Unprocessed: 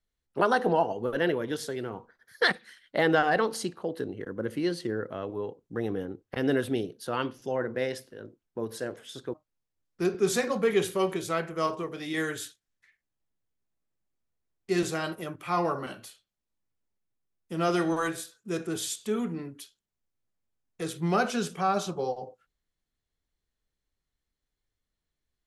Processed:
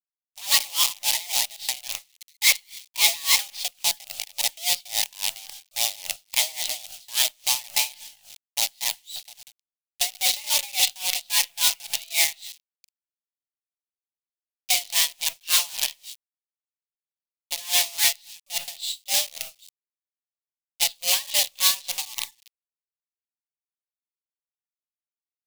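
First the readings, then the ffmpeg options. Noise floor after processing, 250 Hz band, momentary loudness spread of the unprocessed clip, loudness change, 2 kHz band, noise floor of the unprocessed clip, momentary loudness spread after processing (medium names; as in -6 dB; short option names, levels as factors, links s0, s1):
under -85 dBFS, under -25 dB, 14 LU, +7.0 dB, +3.0 dB, under -85 dBFS, 14 LU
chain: -filter_complex "[0:a]highpass=f=180:t=q:w=0.5412,highpass=f=180:t=q:w=1.307,lowpass=f=3600:t=q:w=0.5176,lowpass=f=3600:t=q:w=0.7071,lowpass=f=3600:t=q:w=1.932,afreqshift=360,asplit=2[s0][s1];[s1]adelay=95,lowpass=f=3000:p=1,volume=0.126,asplit=2[s2][s3];[s3]adelay=95,lowpass=f=3000:p=1,volume=0.51,asplit=2[s4][s5];[s5]adelay=95,lowpass=f=3000:p=1,volume=0.51,asplit=2[s6][s7];[s7]adelay=95,lowpass=f=3000:p=1,volume=0.51[s8];[s0][s2][s4][s6][s8]amix=inputs=5:normalize=0,asoftclip=type=hard:threshold=0.0501,acrusher=bits=6:dc=4:mix=0:aa=0.000001,equalizer=f=1000:t=o:w=0.74:g=3.5,aexciter=amount=9.5:drive=9.7:freq=2300,aeval=exprs='val(0)*pow(10,-23*(0.5-0.5*cos(2*PI*3.6*n/s))/20)':c=same,volume=0.501"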